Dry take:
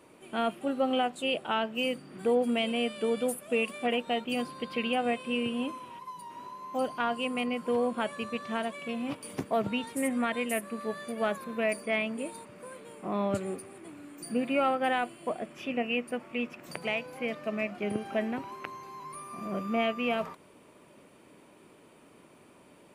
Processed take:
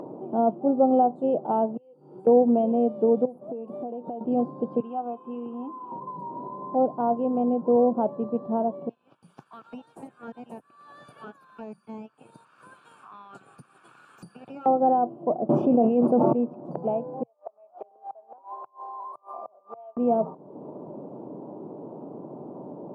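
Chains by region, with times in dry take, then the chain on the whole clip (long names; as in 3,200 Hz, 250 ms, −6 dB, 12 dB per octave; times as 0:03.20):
0:01.77–0:02.27: first-order pre-emphasis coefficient 0.9 + comb filter 2.2 ms, depth 79% + downward compressor 4 to 1, threshold −57 dBFS
0:03.25–0:04.21: high-shelf EQ 11,000 Hz +10 dB + downward compressor 8 to 1, threshold −40 dBFS
0:04.80–0:05.92: high-pass filter 470 Hz + phaser with its sweep stopped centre 2,900 Hz, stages 8
0:08.89–0:14.66: Butterworth high-pass 1,500 Hz 48 dB per octave + tube saturation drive 31 dB, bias 0.35
0:15.49–0:16.33: high-shelf EQ 5,200 Hz +8.5 dB + envelope flattener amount 100%
0:17.23–0:19.97: high-pass filter 680 Hz 24 dB per octave + gate with flip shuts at −34 dBFS, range −31 dB
whole clip: elliptic band-pass filter 130–840 Hz, stop band 40 dB; upward compression, threshold −38 dBFS; level +9 dB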